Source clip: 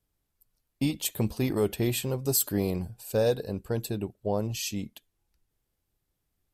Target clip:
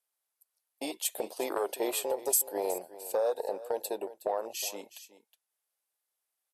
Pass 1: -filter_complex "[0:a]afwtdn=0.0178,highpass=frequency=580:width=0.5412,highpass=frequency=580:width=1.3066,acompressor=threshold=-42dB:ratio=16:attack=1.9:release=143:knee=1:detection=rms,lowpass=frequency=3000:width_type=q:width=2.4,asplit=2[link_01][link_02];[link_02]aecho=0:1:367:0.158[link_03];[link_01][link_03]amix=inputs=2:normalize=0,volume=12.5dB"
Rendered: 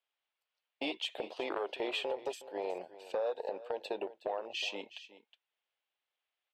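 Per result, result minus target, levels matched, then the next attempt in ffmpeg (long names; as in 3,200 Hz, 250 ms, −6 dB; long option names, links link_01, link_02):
8,000 Hz band −17.0 dB; downward compressor: peak gain reduction +5.5 dB
-filter_complex "[0:a]afwtdn=0.0178,highpass=frequency=580:width=0.5412,highpass=frequency=580:width=1.3066,acompressor=threshold=-42dB:ratio=16:attack=1.9:release=143:knee=1:detection=rms,lowpass=frequency=11000:width_type=q:width=2.4,asplit=2[link_01][link_02];[link_02]aecho=0:1:367:0.158[link_03];[link_01][link_03]amix=inputs=2:normalize=0,volume=12.5dB"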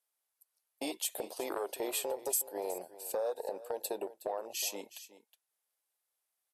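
downward compressor: peak gain reduction +5.5 dB
-filter_complex "[0:a]afwtdn=0.0178,highpass=frequency=580:width=0.5412,highpass=frequency=580:width=1.3066,acompressor=threshold=-36dB:ratio=16:attack=1.9:release=143:knee=1:detection=rms,lowpass=frequency=11000:width_type=q:width=2.4,asplit=2[link_01][link_02];[link_02]aecho=0:1:367:0.158[link_03];[link_01][link_03]amix=inputs=2:normalize=0,volume=12.5dB"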